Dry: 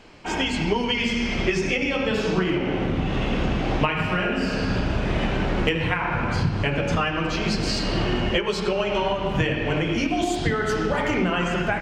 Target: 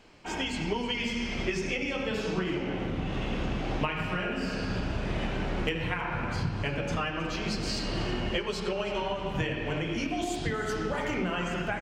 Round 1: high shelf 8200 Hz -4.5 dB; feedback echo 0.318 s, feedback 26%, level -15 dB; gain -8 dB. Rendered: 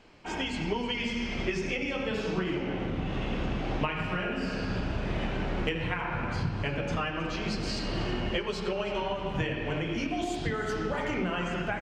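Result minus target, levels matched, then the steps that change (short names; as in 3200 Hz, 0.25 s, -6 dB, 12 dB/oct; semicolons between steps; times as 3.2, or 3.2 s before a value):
8000 Hz band -3.5 dB
change: high shelf 8200 Hz +6 dB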